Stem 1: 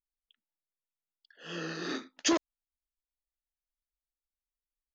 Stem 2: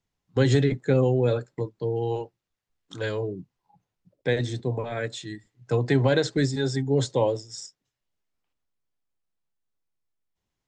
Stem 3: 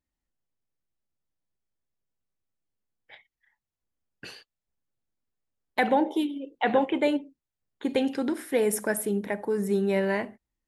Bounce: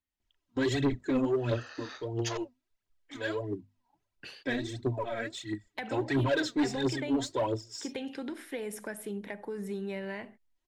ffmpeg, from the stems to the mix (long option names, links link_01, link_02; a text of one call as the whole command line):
ffmpeg -i stem1.wav -i stem2.wav -i stem3.wav -filter_complex "[0:a]highpass=frequency=640:width=0.5412,highpass=frequency=640:width=1.3066,volume=-6dB[link_01];[1:a]bandreject=frequency=50:width_type=h:width=6,bandreject=frequency=100:width_type=h:width=6,bandreject=frequency=150:width_type=h:width=6,bandreject=frequency=200:width_type=h:width=6,bandreject=frequency=250:width_type=h:width=6,aecho=1:1:3.1:0.79,aphaser=in_gain=1:out_gain=1:delay=4.4:decay=0.69:speed=1.5:type=triangular,adelay=200,volume=-7.5dB[link_02];[2:a]equalizer=frequency=3000:width_type=o:width=1.7:gain=6.5,acrossover=split=160[link_03][link_04];[link_04]acompressor=threshold=-27dB:ratio=5[link_05];[link_03][link_05]amix=inputs=2:normalize=0,volume=-7.5dB[link_06];[link_01][link_02][link_06]amix=inputs=3:normalize=0,highshelf=frequency=9100:gain=-5,asoftclip=type=tanh:threshold=-21.5dB" out.wav